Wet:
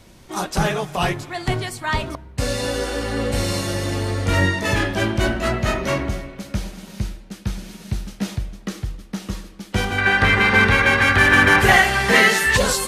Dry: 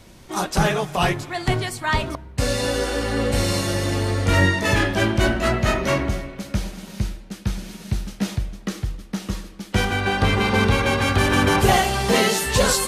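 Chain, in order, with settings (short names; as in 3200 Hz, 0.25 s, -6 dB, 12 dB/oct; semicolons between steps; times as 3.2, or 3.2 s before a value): 9.98–12.57 bell 1800 Hz +14 dB 0.91 oct; gain -1 dB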